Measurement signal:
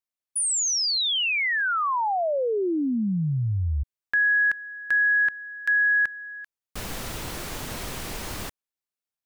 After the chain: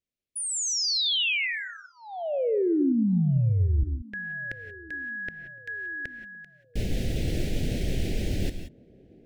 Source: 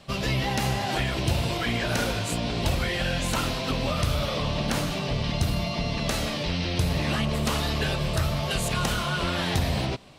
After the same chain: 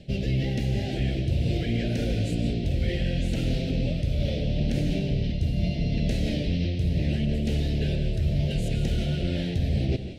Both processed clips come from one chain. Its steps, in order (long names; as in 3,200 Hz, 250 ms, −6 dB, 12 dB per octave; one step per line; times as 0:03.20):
low-pass filter 1,500 Hz 6 dB per octave
low-shelf EQ 170 Hz +5 dB
reversed playback
downward compressor 6 to 1, threshold −31 dBFS
reversed playback
Butterworth band-reject 1,100 Hz, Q 0.63
on a send: feedback echo with a band-pass in the loop 1,064 ms, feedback 66%, band-pass 340 Hz, level −21 dB
on the sum: reverb whose tail is shaped and stops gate 200 ms rising, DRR 9 dB
level +8.5 dB